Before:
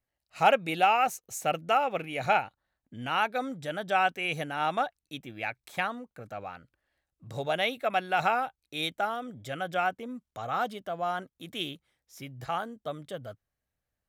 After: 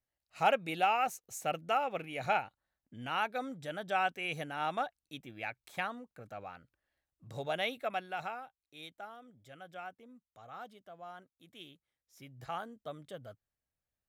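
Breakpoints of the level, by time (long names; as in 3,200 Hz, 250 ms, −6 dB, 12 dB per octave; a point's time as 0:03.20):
0:07.81 −6 dB
0:08.44 −17 dB
0:11.68 −17 dB
0:12.47 −7.5 dB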